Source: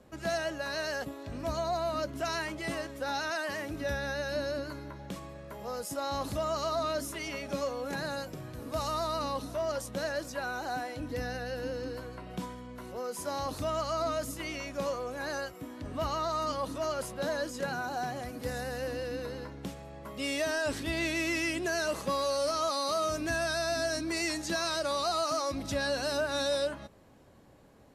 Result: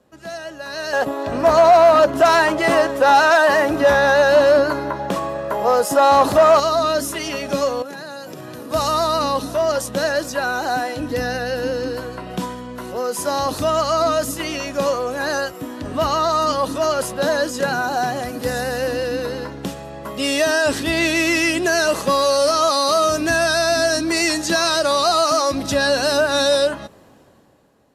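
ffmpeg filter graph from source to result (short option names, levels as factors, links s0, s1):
-filter_complex "[0:a]asettb=1/sr,asplit=3[s0][s1][s2];[s0]atrim=end=0.934[s3];[s1]atrim=start=0.93:end=6.6,asetpts=PTS-STARTPTS,afade=t=in:d=0.004:c=qsin,afade=t=out:st=5.666:d=0.004:c=qsin,asoftclip=type=hard:threshold=0.0299,equalizer=f=800:t=o:w=2.5:g=11[s4];[s2]atrim=start=6.596[s5];[s3][s4]acrossfade=d=0.004:c1=hsin:c2=qsin[s6];[s6][s5]acrossfade=d=0.004:c1=qsin:c2=hsin,asettb=1/sr,asplit=3[s7][s8][s9];[s7]atrim=end=7.824[s10];[s8]atrim=start=7.82:end=8.71,asetpts=PTS-STARTPTS,afade=t=in:d=0.004:c=qsin,afade=t=out:st=0.886:d=0.004:c=qsin,highpass=160,acompressor=threshold=0.00794:ratio=10:attack=3.2:release=140:knee=1:detection=peak,bandreject=f=7900:w=26[s11];[s9]atrim=start=8.706[s12];[s10][s11]acrossfade=d=0.004:c1=hsin:c2=qsin[s13];[s13][s12]acrossfade=d=0.004:c1=qsin:c2=hsin,lowshelf=f=93:g=-11,bandreject=f=2200:w=13,dynaudnorm=f=110:g=17:m=5.01"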